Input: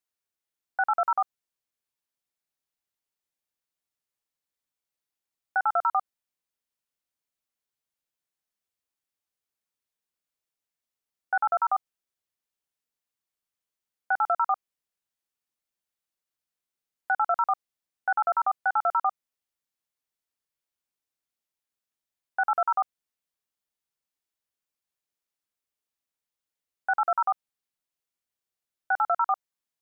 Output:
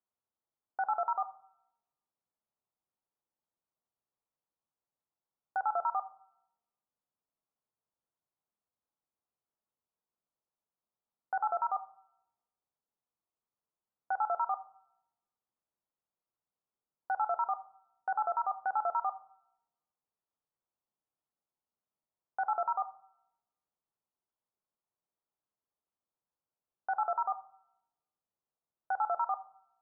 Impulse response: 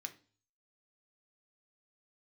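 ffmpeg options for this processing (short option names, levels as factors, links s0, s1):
-filter_complex "[0:a]lowpass=f=1100:w=0.5412,lowpass=f=1100:w=1.3066,alimiter=level_in=1.5:limit=0.0631:level=0:latency=1:release=41,volume=0.668,asplit=2[s0][s1];[1:a]atrim=start_sample=2205,asetrate=23814,aresample=44100[s2];[s1][s2]afir=irnorm=-1:irlink=0,volume=0.794[s3];[s0][s3]amix=inputs=2:normalize=0,volume=0.841"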